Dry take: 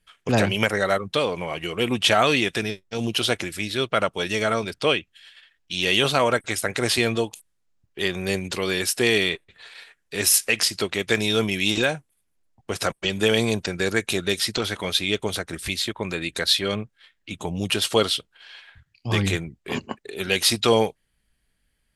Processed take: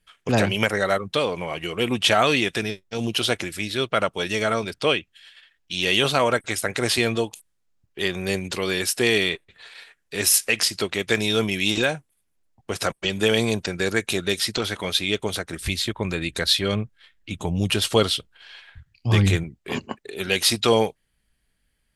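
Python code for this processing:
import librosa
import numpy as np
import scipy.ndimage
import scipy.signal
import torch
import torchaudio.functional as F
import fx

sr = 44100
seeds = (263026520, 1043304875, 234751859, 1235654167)

y = fx.low_shelf(x, sr, hz=130.0, db=11.0, at=(15.6, 19.44))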